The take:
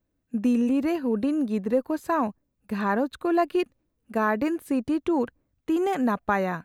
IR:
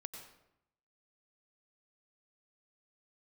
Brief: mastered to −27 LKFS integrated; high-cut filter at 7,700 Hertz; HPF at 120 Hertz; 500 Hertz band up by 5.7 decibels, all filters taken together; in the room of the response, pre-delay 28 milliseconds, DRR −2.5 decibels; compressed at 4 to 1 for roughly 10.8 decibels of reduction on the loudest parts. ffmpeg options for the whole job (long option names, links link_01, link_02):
-filter_complex "[0:a]highpass=120,lowpass=7700,equalizer=frequency=500:width_type=o:gain=7.5,acompressor=threshold=-24dB:ratio=4,asplit=2[link_01][link_02];[1:a]atrim=start_sample=2205,adelay=28[link_03];[link_02][link_03]afir=irnorm=-1:irlink=0,volume=6dB[link_04];[link_01][link_04]amix=inputs=2:normalize=0,volume=-3dB"